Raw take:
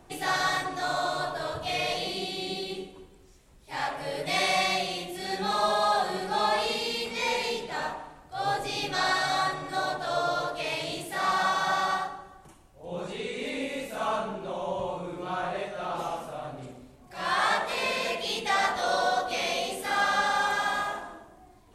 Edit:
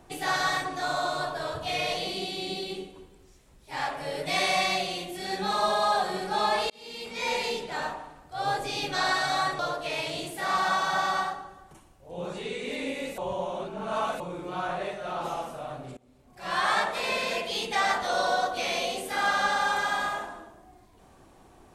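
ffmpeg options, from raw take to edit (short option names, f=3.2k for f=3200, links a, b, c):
-filter_complex "[0:a]asplit=6[a][b][c][d][e][f];[a]atrim=end=6.7,asetpts=PTS-STARTPTS,afade=t=out:st=6.696:d=0.004:c=hsin[g];[b]atrim=start=6.7:end=9.592,asetpts=PTS-STARTPTS,afade=t=in:d=0.66[h];[c]atrim=start=10.328:end=13.922[i];[d]atrim=start=13.918:end=14.942,asetpts=PTS-STARTPTS,areverse[j];[e]atrim=start=14.938:end=16.71,asetpts=PTS-STARTPTS,afade=t=out:st=1.768:d=0.004:c=hsin:silence=0.0841395[k];[f]atrim=start=16.71,asetpts=PTS-STARTPTS,afade=t=in:d=0.52:silence=0.0841395[l];[g][h]concat=n=2:v=0:a=1[m];[m][i]acrossfade=d=0.004:c1=hsin:c2=hsin[n];[n][j]acrossfade=d=0.004:c1=hsin:c2=hsin[o];[k][l]concat=n=2:v=0:a=1[p];[o][p]acrossfade=d=0.004:c1=hsin:c2=hsin"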